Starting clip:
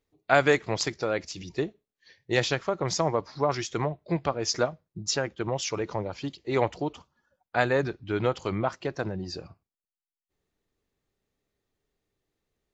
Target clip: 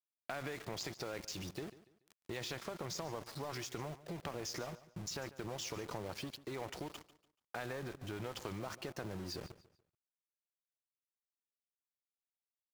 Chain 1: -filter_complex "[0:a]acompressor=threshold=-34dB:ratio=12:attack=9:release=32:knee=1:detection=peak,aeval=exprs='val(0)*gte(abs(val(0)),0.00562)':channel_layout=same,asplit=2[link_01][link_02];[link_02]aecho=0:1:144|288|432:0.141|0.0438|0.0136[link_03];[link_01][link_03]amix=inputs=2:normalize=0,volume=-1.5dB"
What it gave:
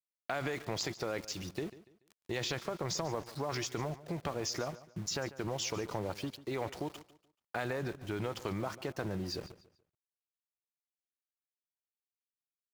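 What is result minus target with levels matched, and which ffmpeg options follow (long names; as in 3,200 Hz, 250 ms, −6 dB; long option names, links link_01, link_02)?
downward compressor: peak gain reduction −6.5 dB
-filter_complex "[0:a]acompressor=threshold=-41dB:ratio=12:attack=9:release=32:knee=1:detection=peak,aeval=exprs='val(0)*gte(abs(val(0)),0.00562)':channel_layout=same,asplit=2[link_01][link_02];[link_02]aecho=0:1:144|288|432:0.141|0.0438|0.0136[link_03];[link_01][link_03]amix=inputs=2:normalize=0,volume=-1.5dB"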